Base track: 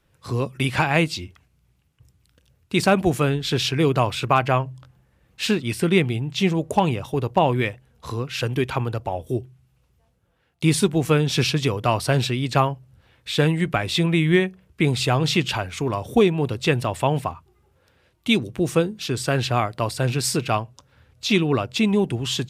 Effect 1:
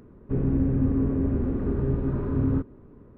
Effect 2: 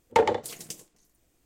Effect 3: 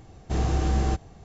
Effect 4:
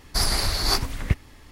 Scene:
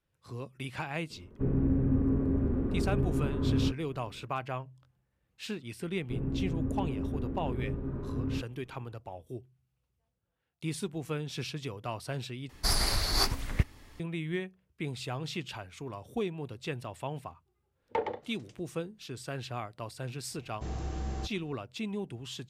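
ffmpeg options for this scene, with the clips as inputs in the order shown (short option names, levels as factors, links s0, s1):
-filter_complex "[1:a]asplit=2[s0][s1];[0:a]volume=0.15[s2];[2:a]lowpass=3000[s3];[s2]asplit=2[s4][s5];[s4]atrim=end=12.494[s6];[4:a]atrim=end=1.51,asetpts=PTS-STARTPTS,volume=0.562[s7];[s5]atrim=start=13.996[s8];[s0]atrim=end=3.17,asetpts=PTS-STARTPTS,volume=0.631,afade=t=in:d=0.004:c=hsin,afade=t=out:st=3.166:d=0.004:c=hsin,adelay=1100[s9];[s1]atrim=end=3.17,asetpts=PTS-STARTPTS,volume=0.335,afade=t=in:d=0.004:c=hsin,afade=t=out:st=3.166:d=0.004:c=hsin,adelay=5800[s10];[s3]atrim=end=1.45,asetpts=PTS-STARTPTS,volume=0.299,afade=t=in:d=0.004:c=hsin,afade=t=out:st=1.446:d=0.004:c=hsin,adelay=17790[s11];[3:a]atrim=end=1.24,asetpts=PTS-STARTPTS,volume=0.251,afade=t=in:d=0.004:c=hsin,afade=t=out:st=1.236:d=0.004:c=hsin,adelay=20310[s12];[s6][s7]acrossfade=d=0.004:c1=hsin:c2=hsin[s13];[s13][s8]acrossfade=d=0.004:c1=hsin:c2=hsin[s14];[s14][s9][s10][s11][s12]amix=inputs=5:normalize=0"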